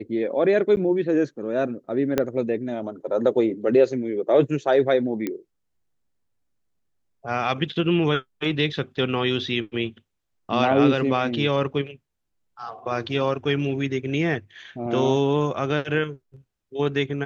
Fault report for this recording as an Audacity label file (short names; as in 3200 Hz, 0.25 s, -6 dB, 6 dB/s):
0.760000	0.770000	gap 9.7 ms
2.180000	2.180000	pop -7 dBFS
5.270000	5.270000	pop -14 dBFS